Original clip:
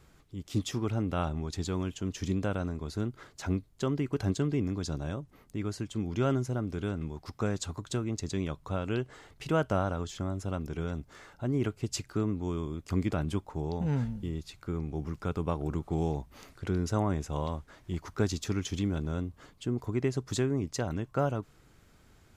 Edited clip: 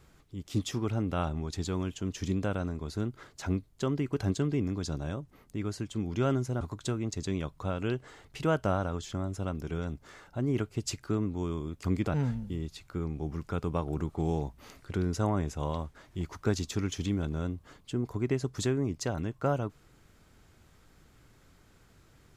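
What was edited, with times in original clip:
6.61–7.67 cut
13.2–13.87 cut

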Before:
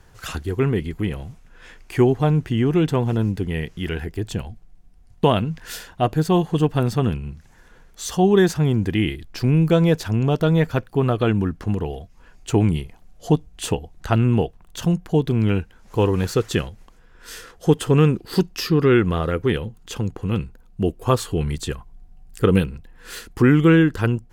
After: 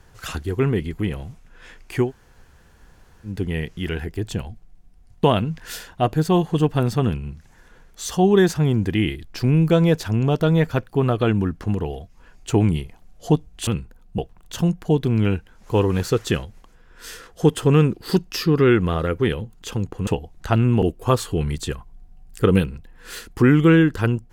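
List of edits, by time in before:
2.04–3.31 room tone, crossfade 0.16 s
13.67–14.42 swap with 20.31–20.82

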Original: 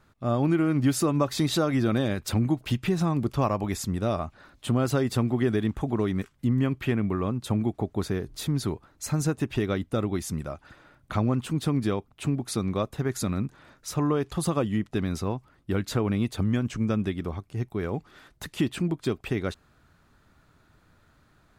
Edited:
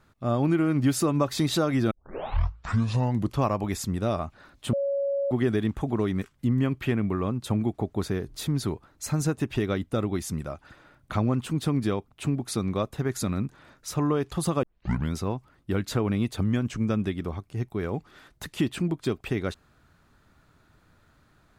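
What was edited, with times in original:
1.91 tape start 1.48 s
4.73–5.31 bleep 558 Hz -23.5 dBFS
14.63 tape start 0.51 s

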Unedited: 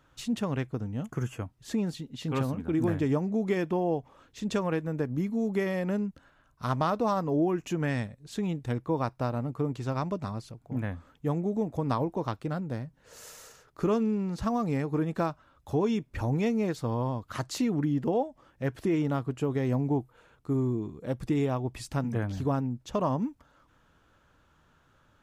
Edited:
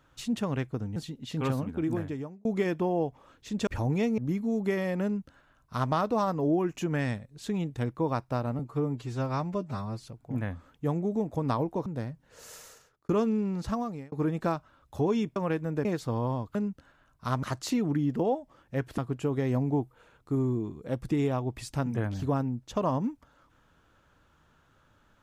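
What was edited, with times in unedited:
0.96–1.87 cut
2.59–3.36 fade out linear
4.58–5.07 swap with 16.1–16.61
5.93–6.81 copy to 17.31
9.48–10.44 stretch 1.5×
12.27–12.6 cut
13.34–13.83 fade out
14.4–14.86 fade out
18.86–19.16 cut

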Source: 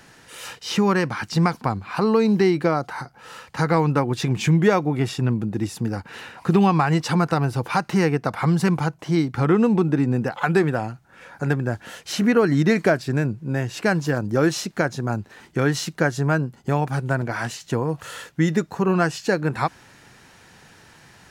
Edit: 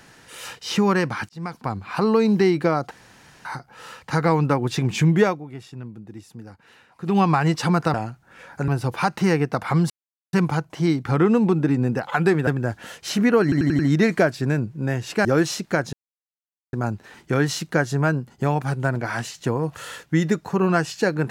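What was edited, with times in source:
1.29–1.89 fade in linear
2.91 insert room tone 0.54 s
4.69–6.67 dip -14.5 dB, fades 0.18 s
8.62 insert silence 0.43 s
10.76–11.5 move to 7.4
12.46 stutter 0.09 s, 5 plays
13.92–14.31 cut
14.99 insert silence 0.80 s

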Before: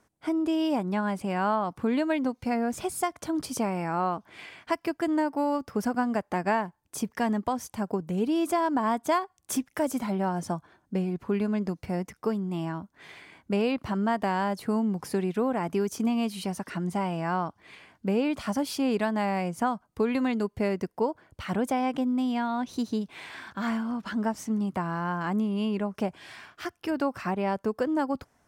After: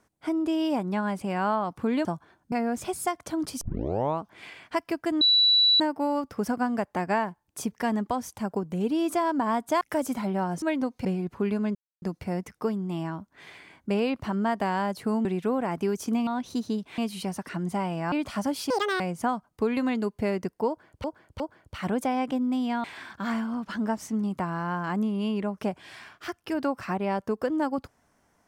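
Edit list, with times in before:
2.05–2.48 swap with 10.47–10.94
3.57 tape start 0.59 s
5.17 add tone 3940 Hz -16.5 dBFS 0.59 s
9.18–9.66 cut
11.64 insert silence 0.27 s
14.87–15.17 cut
17.33–18.23 cut
18.81–19.38 speed 190%
21.06–21.42 loop, 3 plays
22.5–23.21 move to 16.19

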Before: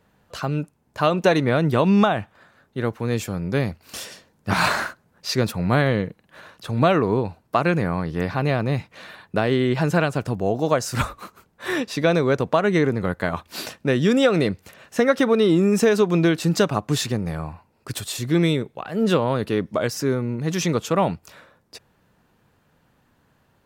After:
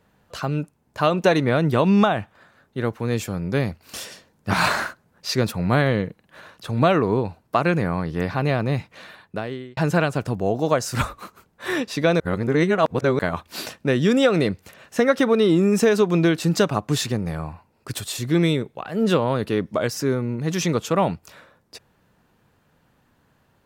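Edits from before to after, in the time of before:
8.92–9.77 fade out
12.2–13.19 reverse

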